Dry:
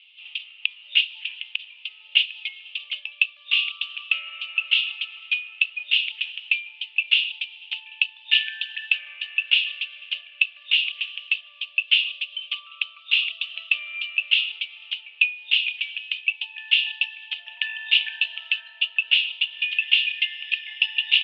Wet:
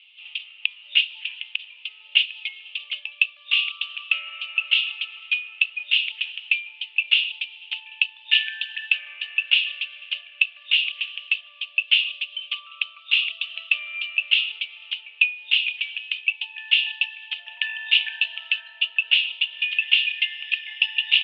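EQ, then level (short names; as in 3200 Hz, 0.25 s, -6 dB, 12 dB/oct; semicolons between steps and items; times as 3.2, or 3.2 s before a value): high shelf 3700 Hz -7 dB; +3.0 dB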